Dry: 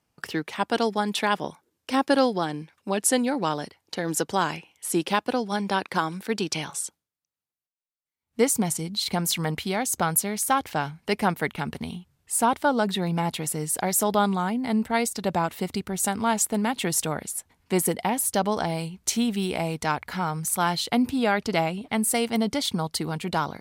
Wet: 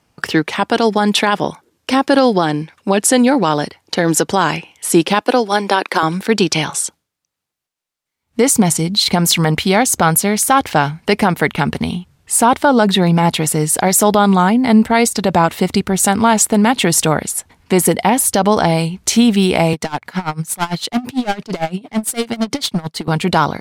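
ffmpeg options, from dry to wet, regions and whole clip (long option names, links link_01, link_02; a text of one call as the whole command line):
ffmpeg -i in.wav -filter_complex "[0:a]asettb=1/sr,asplit=3[link_01][link_02][link_03];[link_01]atrim=end=5.214[link_04];[link_02]atrim=start=5.21:end=6.03,asetpts=PTS-STARTPTS,afade=type=in:duration=0.004:curve=qsin,afade=type=out:start_time=0.816:duration=0.004:curve=qsin,highpass=frequency=260:width=0.5412,highpass=frequency=260:width=1.3066,equalizer=frequency=12000:width_type=o:width=0.51:gain=4[link_05];[link_03]atrim=start=6.026[link_06];[link_04][link_05]acrossfade=duration=0.004:curve1=hsin:curve2=qsin[link_07];[link_07][link_06]acrossfade=duration=0.004:curve1=qsin:curve2=hsin,asettb=1/sr,asplit=3[link_08][link_09][link_10];[link_08]atrim=end=19.734[link_11];[link_09]atrim=start=19.73:end=23.08,asetpts=PTS-STARTPTS,afade=type=in:duration=0.004:curve=qsin,afade=type=out:start_time=3.346:duration=0.004:curve=qsin,highpass=frequency=110:width=0.5412,highpass=frequency=110:width=1.3066,asoftclip=type=hard:threshold=-24.5dB,aeval=exprs='val(0)*pow(10,-21*(0.5-0.5*cos(2*PI*8.9*n/s))/20)':channel_layout=same[link_12];[link_10]atrim=start=23.076[link_13];[link_11][link_12]acrossfade=duration=0.004:curve1=hsin:curve2=qsin[link_14];[link_14][link_13]acrossfade=duration=0.004:curve1=qsin:curve2=hsin,highshelf=frequency=12000:gain=-10,alimiter=level_in=15dB:limit=-1dB:release=50:level=0:latency=1,volume=-1dB" out.wav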